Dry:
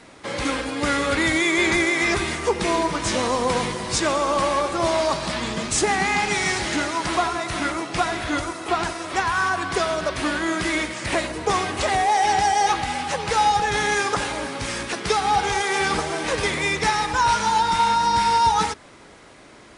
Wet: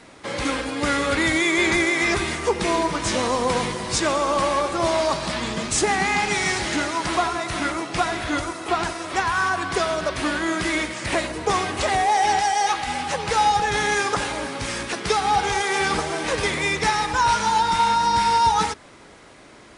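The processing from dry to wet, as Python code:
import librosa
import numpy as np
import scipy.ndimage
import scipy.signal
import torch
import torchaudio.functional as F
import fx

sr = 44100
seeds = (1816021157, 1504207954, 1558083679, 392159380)

y = fx.low_shelf(x, sr, hz=380.0, db=-9.5, at=(12.38, 12.87))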